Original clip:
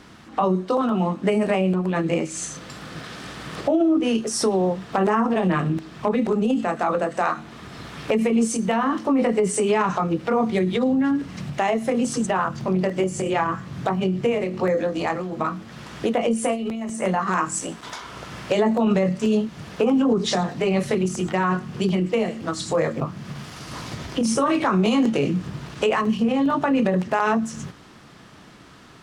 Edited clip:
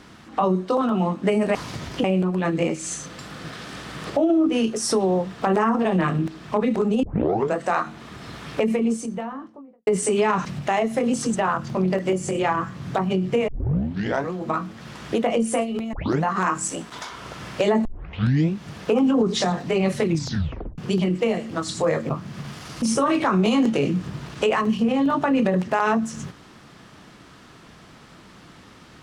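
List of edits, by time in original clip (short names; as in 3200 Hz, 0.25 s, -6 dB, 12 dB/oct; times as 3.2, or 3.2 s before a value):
6.54 tape start 0.51 s
7.9–9.38 studio fade out
9.96–11.36 cut
14.39 tape start 0.85 s
16.84 tape start 0.31 s
18.76 tape start 0.77 s
20.97 tape stop 0.72 s
23.73–24.22 move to 1.55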